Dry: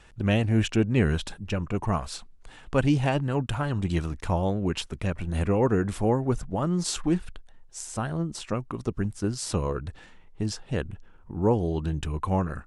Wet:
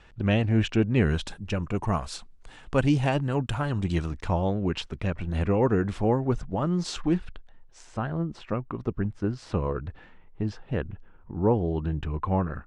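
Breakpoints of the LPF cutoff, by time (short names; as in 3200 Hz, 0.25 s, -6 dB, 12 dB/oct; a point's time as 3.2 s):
0.9 s 4600 Hz
1.35 s 9600 Hz
3.74 s 9600 Hz
4.48 s 4700 Hz
7.1 s 4700 Hz
8.19 s 2400 Hz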